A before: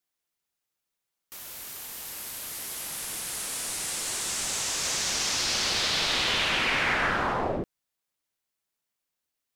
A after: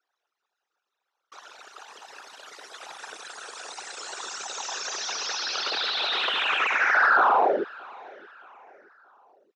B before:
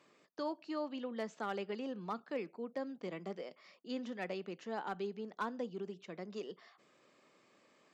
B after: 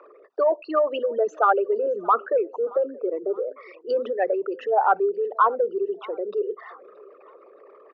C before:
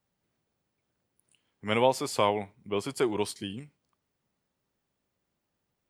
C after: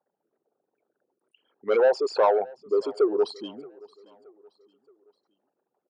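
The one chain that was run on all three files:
spectral envelope exaggerated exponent 3
mid-hump overdrive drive 17 dB, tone 3,500 Hz, clips at −13 dBFS
loudspeaker in its box 370–5,200 Hz, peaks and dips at 410 Hz +4 dB, 790 Hz +4 dB, 1,400 Hz +5 dB, 2,100 Hz −9 dB, 3,100 Hz −6 dB, 4,600 Hz −8 dB
repeating echo 624 ms, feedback 44%, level −23.5 dB
loudness normalisation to −24 LKFS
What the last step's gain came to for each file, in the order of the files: +0.5, +10.0, +1.0 decibels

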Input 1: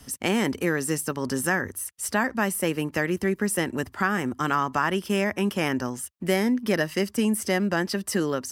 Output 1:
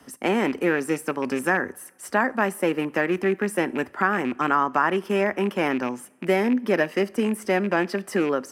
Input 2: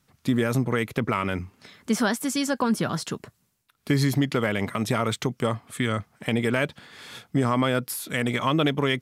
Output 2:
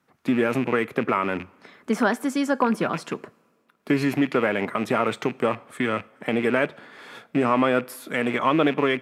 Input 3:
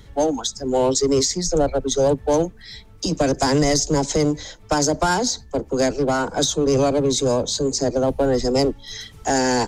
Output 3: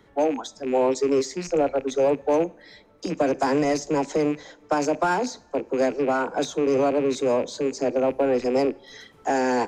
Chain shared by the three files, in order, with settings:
loose part that buzzes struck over −29 dBFS, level −23 dBFS
three-way crossover with the lows and the highs turned down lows −20 dB, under 200 Hz, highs −13 dB, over 2,200 Hz
coupled-rooms reverb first 0.41 s, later 2.2 s, from −18 dB, DRR 18 dB
loudness normalisation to −24 LKFS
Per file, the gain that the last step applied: +4.0, +4.0, −2.0 decibels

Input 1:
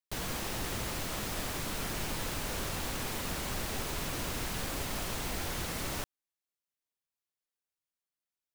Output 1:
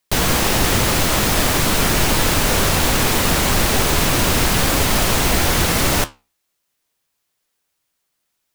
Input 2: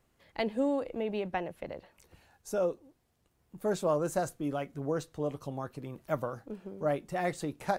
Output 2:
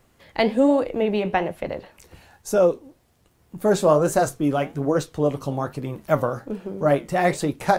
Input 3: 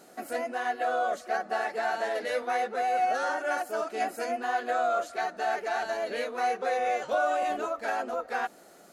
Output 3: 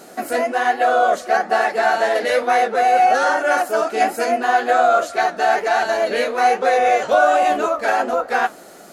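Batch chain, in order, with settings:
flanger 1.2 Hz, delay 7.7 ms, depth 9.2 ms, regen −69%
normalise the peak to −3 dBFS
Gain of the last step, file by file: +23.5, +16.0, +16.5 decibels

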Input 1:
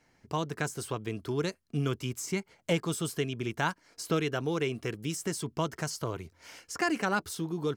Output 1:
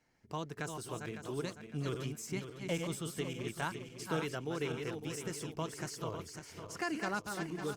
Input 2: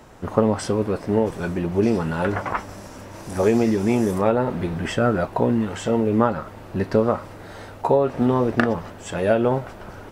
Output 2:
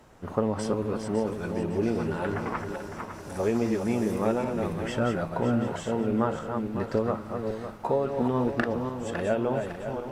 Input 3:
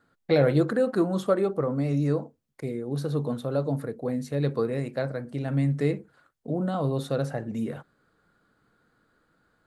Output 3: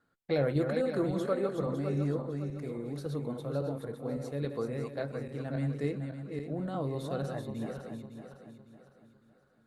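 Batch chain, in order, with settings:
feedback delay that plays each chunk backwards 278 ms, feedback 60%, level −5.5 dB
level −8 dB
Opus 64 kbit/s 48,000 Hz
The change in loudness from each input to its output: −6.5, −7.0, −7.0 LU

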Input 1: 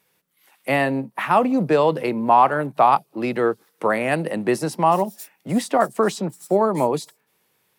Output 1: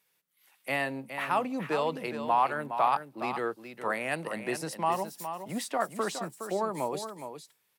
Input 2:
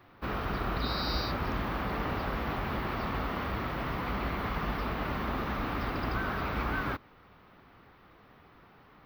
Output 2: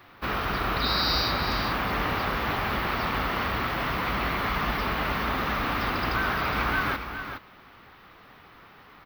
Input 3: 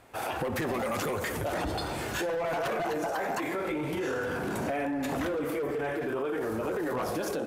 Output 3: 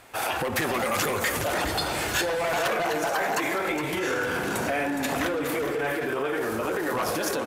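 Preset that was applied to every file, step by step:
tilt shelving filter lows −4.5 dB
on a send: single-tap delay 415 ms −9 dB
on the sum: normalise the peak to −12 dBFS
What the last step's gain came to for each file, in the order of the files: −10.5, +6.0, +5.5 decibels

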